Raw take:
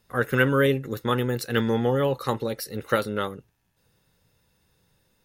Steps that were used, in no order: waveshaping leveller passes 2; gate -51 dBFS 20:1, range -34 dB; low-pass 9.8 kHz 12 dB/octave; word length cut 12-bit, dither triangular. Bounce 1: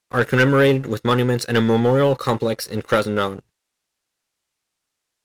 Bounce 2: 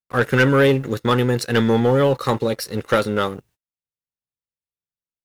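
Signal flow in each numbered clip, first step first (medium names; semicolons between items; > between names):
gate > word length cut > low-pass > waveshaping leveller; low-pass > word length cut > waveshaping leveller > gate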